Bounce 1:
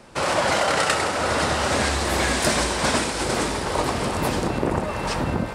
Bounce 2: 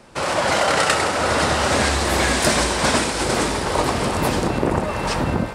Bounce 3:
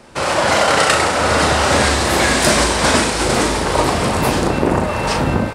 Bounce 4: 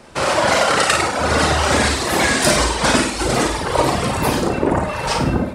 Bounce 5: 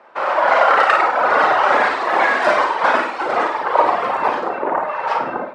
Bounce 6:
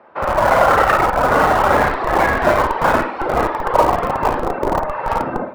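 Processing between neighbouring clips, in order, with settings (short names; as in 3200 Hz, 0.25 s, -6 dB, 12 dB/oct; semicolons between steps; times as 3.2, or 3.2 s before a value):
AGC gain up to 3.5 dB
doubler 38 ms -6.5 dB; gain +3.5 dB
reverb removal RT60 1.7 s; on a send: flutter echo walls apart 9.1 m, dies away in 0.49 s
LPF 1200 Hz 12 dB/oct; AGC; HPF 860 Hz 12 dB/oct; gain +5 dB
RIAA curve playback; notch 6700 Hz, Q 7.7; in parallel at -7 dB: Schmitt trigger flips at -11.5 dBFS; on the sum: gain -1 dB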